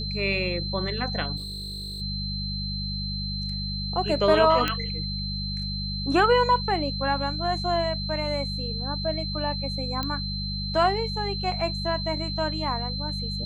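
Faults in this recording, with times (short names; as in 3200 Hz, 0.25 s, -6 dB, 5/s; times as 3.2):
hum 50 Hz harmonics 4 -32 dBFS
tone 4100 Hz -32 dBFS
1.36–2.02 clipped -32.5 dBFS
4.68 pop -10 dBFS
10.03 pop -15 dBFS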